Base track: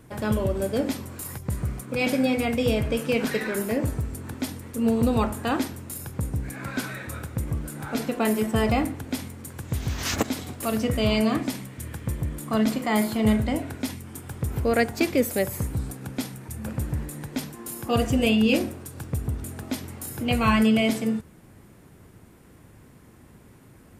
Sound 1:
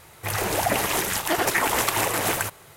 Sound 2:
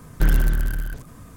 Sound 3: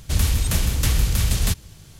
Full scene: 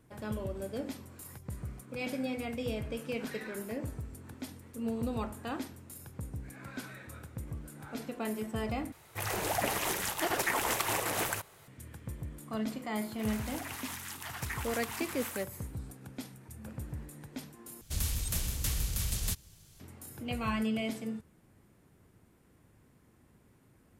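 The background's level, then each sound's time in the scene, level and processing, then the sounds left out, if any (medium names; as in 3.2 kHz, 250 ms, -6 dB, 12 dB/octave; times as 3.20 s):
base track -12.5 dB
8.92 s: replace with 1 -8.5 dB
12.95 s: add 1 -16.5 dB + high-pass 890 Hz 24 dB/octave
17.81 s: replace with 3 -14.5 dB + treble shelf 5.4 kHz +9 dB
not used: 2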